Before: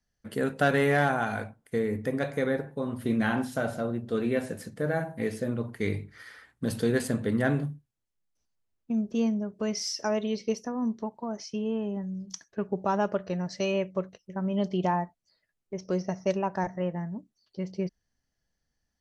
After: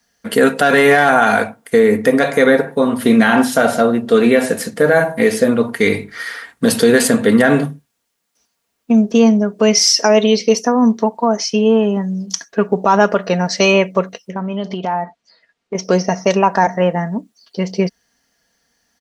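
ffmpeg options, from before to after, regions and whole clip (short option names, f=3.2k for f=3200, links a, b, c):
-filter_complex "[0:a]asettb=1/sr,asplit=3[a][b][c];[a]atrim=end=14.314[d];[b]atrim=start=14.31:end=15.75,asetpts=PTS-STARTPTS,afade=t=in:d=0.004:c=qsin,afade=t=out:st=1.436:d=0.004:c=qsin,lowpass=4.5k,acompressor=threshold=-34dB:ratio=8:attack=3.2:release=140:knee=1:detection=peak[e];[c]atrim=start=15.746[f];[d][e]acrossfade=d=0.004:c1=hsin:c2=qsin[g];[g][f]acrossfade=d=0.004:c1=qsin:c2=hsin,highpass=f=450:p=1,aecho=1:1:4.3:0.39,alimiter=level_in=21.5dB:limit=-1dB:release=50:level=0:latency=1,volume=-1dB"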